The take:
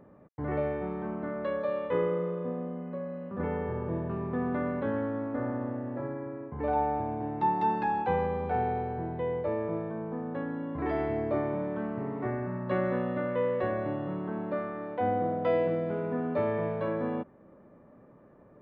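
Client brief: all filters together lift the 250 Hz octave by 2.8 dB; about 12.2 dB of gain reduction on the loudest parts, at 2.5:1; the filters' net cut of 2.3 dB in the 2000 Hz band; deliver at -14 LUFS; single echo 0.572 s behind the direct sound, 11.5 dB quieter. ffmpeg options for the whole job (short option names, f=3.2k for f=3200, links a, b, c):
-af "equalizer=f=250:t=o:g=3.5,equalizer=f=2k:t=o:g=-3,acompressor=threshold=-42dB:ratio=2.5,aecho=1:1:572:0.266,volume=26.5dB"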